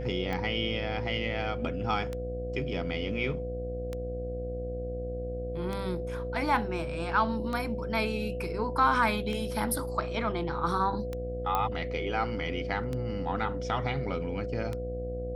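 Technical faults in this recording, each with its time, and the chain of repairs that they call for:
buzz 60 Hz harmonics 12 -37 dBFS
tick 33 1/3 rpm -21 dBFS
whine 500 Hz -35 dBFS
11.55 s: pop -15 dBFS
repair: de-click; de-hum 60 Hz, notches 12; band-stop 500 Hz, Q 30

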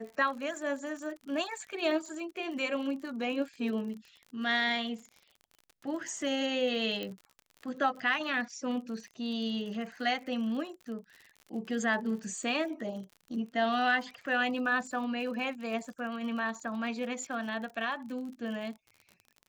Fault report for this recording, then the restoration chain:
crackle 49 per s -41 dBFS
7.03 s: pop -23 dBFS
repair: de-click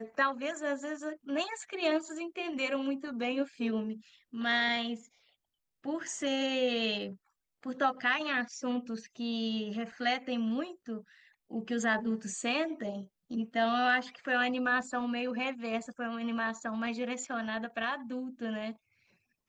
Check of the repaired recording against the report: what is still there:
7.03 s: pop

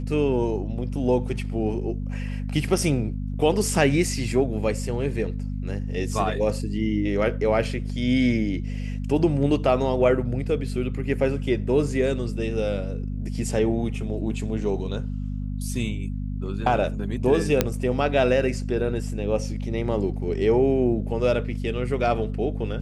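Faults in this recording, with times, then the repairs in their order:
hum 50 Hz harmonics 5 -29 dBFS
17.61 s: pop -4 dBFS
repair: de-click; de-hum 50 Hz, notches 5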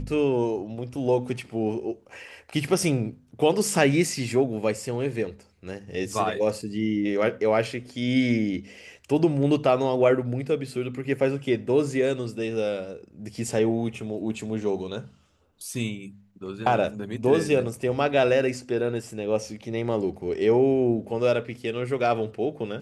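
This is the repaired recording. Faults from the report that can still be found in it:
nothing left

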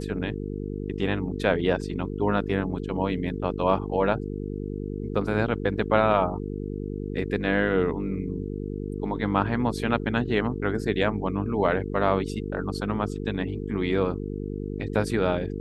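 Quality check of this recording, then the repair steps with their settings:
buzz 50 Hz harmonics 9 -32 dBFS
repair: de-hum 50 Hz, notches 9

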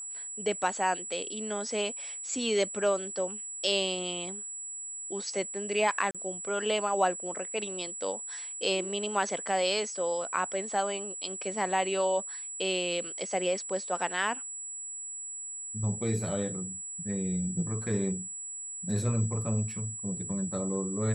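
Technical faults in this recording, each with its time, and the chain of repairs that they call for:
whine 7.8 kHz -37 dBFS
6.11–6.15 s: dropout 36 ms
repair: band-stop 7.8 kHz, Q 30; interpolate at 6.11 s, 36 ms

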